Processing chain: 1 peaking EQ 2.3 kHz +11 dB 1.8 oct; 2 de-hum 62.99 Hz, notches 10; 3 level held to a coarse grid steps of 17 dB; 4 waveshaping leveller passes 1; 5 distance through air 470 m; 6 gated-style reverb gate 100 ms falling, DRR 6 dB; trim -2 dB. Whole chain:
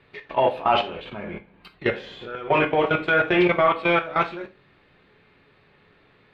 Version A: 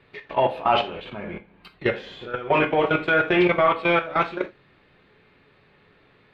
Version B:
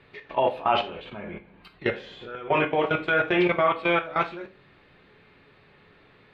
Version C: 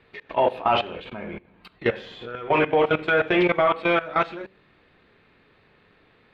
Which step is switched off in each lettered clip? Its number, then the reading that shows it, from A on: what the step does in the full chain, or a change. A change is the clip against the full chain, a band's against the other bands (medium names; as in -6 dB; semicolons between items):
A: 2, momentary loudness spread change -1 LU; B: 4, loudness change -3.0 LU; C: 6, crest factor change -1.5 dB